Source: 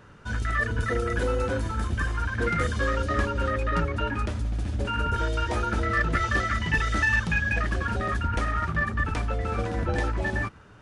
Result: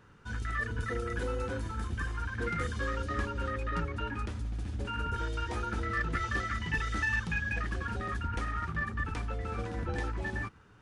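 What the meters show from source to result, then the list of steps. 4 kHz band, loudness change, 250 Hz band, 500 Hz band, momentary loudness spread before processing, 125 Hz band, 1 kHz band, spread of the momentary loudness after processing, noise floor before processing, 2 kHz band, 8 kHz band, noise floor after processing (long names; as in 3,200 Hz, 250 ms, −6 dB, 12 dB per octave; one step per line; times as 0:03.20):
−7.5 dB, −7.5 dB, −7.5 dB, −9.0 dB, 5 LU, −7.5 dB, −7.5 dB, 5 LU, −49 dBFS, −7.5 dB, −7.5 dB, −56 dBFS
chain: parametric band 620 Hz −10 dB 0.21 octaves
level −7.5 dB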